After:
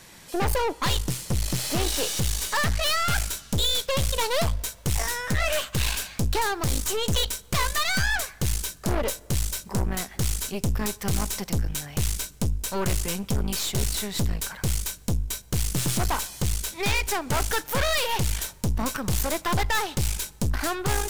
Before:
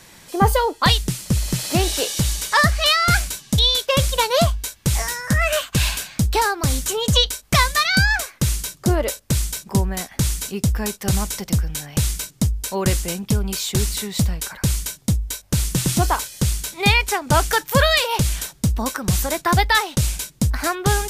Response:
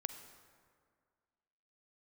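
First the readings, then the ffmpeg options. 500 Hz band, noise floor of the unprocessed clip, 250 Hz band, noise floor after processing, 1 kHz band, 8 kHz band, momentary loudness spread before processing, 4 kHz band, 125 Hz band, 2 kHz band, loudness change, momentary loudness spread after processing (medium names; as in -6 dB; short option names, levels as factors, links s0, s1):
-6.0 dB, -49 dBFS, -7.0 dB, -48 dBFS, -7.5 dB, -4.5 dB, 7 LU, -7.0 dB, -7.0 dB, -7.5 dB, -6.5 dB, 5 LU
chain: -filter_complex "[0:a]aeval=exprs='(tanh(15.8*val(0)+0.75)-tanh(0.75))/15.8':c=same,asplit=2[s0][s1];[1:a]atrim=start_sample=2205[s2];[s1][s2]afir=irnorm=-1:irlink=0,volume=0.299[s3];[s0][s3]amix=inputs=2:normalize=0"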